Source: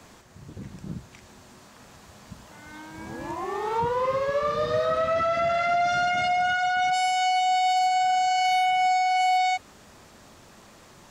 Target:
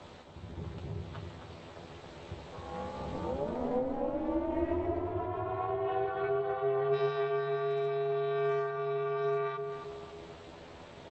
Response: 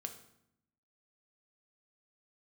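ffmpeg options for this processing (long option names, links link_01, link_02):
-filter_complex "[0:a]equalizer=frequency=1200:width_type=o:width=2.4:gain=4.5,bandreject=frequency=50:width_type=h:width=6,bandreject=frequency=100:width_type=h:width=6,bandreject=frequency=150:width_type=h:width=6,bandreject=frequency=200:width_type=h:width=6,bandreject=frequency=250:width_type=h:width=6,bandreject=frequency=300:width_type=h:width=6,bandreject=frequency=350:width_type=h:width=6,bandreject=frequency=400:width_type=h:width=6,acompressor=threshold=-31dB:ratio=6,afreqshift=61,asetrate=22696,aresample=44100,atempo=1.94306,tremolo=f=270:d=0.824,asplit=2[link_01][link_02];[link_02]adelay=12,volume=-4dB[link_03];[link_01][link_03]amix=inputs=2:normalize=0,asplit=2[link_04][link_05];[link_05]adelay=268,lowpass=frequency=1200:poles=1,volume=-5dB,asplit=2[link_06][link_07];[link_07]adelay=268,lowpass=frequency=1200:poles=1,volume=0.48,asplit=2[link_08][link_09];[link_09]adelay=268,lowpass=frequency=1200:poles=1,volume=0.48,asplit=2[link_10][link_11];[link_11]adelay=268,lowpass=frequency=1200:poles=1,volume=0.48,asplit=2[link_12][link_13];[link_13]adelay=268,lowpass=frequency=1200:poles=1,volume=0.48,asplit=2[link_14][link_15];[link_15]adelay=268,lowpass=frequency=1200:poles=1,volume=0.48[link_16];[link_04][link_06][link_08][link_10][link_12][link_14][link_16]amix=inputs=7:normalize=0,volume=1.5dB"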